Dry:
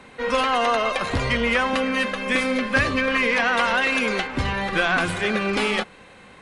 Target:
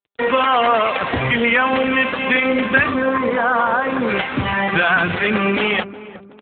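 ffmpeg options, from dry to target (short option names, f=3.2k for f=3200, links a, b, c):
-filter_complex "[0:a]asettb=1/sr,asplit=3[a][b][c];[a]atrim=end=2.944[d];[b]atrim=start=2.94:end=4.09,asetpts=PTS-STARTPTS,afade=t=in:d=0.004:c=qsin,afade=t=out:st=1.146:d=0.004:c=qsin,lowpass=f=1.4k:w=0.5412,lowpass=f=1.4k:w=1.3066[e];[c]atrim=start=4.086[f];[d][e]acrossfade=d=0.004:c1=hsin:c2=qsin[g];[g][f]acrossfade=d=0.004:c1=qsin:c2=hsin,equalizer=f=320:w=0.83:g=-3,asplit=2[h][i];[i]acompressor=threshold=-31dB:ratio=10,volume=2.5dB[j];[h][j]amix=inputs=2:normalize=0,acrusher=bits=4:mix=0:aa=0.000001,asoftclip=type=tanh:threshold=-7.5dB,asplit=2[k][l];[l]adelay=365,lowpass=f=900:p=1,volume=-14dB,asplit=2[m][n];[n]adelay=365,lowpass=f=900:p=1,volume=0.4,asplit=2[o][p];[p]adelay=365,lowpass=f=900:p=1,volume=0.4,asplit=2[q][r];[r]adelay=365,lowpass=f=900:p=1,volume=0.4[s];[m][o][q][s]amix=inputs=4:normalize=0[t];[k][t]amix=inputs=2:normalize=0,volume=5.5dB" -ar 8000 -c:a libopencore_amrnb -b:a 7400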